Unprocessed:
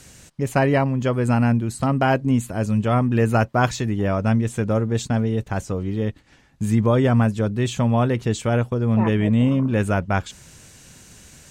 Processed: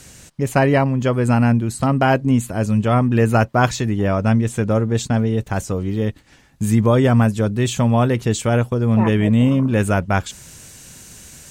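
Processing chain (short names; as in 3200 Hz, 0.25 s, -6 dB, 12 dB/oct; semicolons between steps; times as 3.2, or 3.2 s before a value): high shelf 8200 Hz +2.5 dB, from 5.44 s +9.5 dB; gain +3 dB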